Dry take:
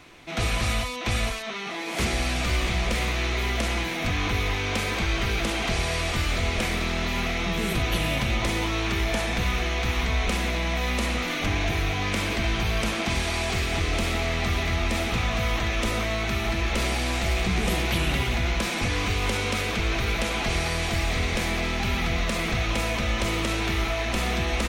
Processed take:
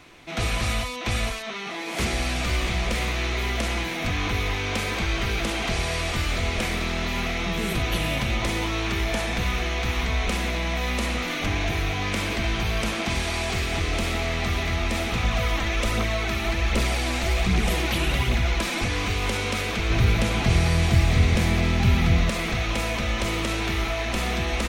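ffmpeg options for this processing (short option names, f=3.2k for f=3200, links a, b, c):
-filter_complex "[0:a]asettb=1/sr,asplit=3[a][b][c];[a]atrim=end=15.244[d];[b]atrim=start=15.24:end=18.84,asetpts=PTS-STARTPTS,afade=t=in:d=0.004:c=qsin,afade=t=out:st=3.596:d=0.004:c=qsin,aphaser=in_gain=1:out_gain=1:delay=3.9:decay=0.39:speed=1.3:type=triangular[e];[c]atrim=start=18.836[f];[d][e]acrossfade=d=0.004:c1=hsin:c2=qsin[g];[g][f]acrossfade=d=0.004:c1=qsin:c2=hsin,asettb=1/sr,asplit=3[h][i][j];[h]atrim=end=19.904[k];[i]atrim=start=19.9:end=22.3,asetpts=PTS-STARTPTS,afade=t=in:d=0.004:c=qsin,afade=t=out:st=2.396:d=0.004:c=qsin,equalizer=f=110:t=o:w=2:g=12.5[l];[j]atrim=start=22.296[m];[k][l]acrossfade=d=0.004:c1=hsin:c2=qsin[n];[n][m]acrossfade=d=0.004:c1=qsin:c2=hsin"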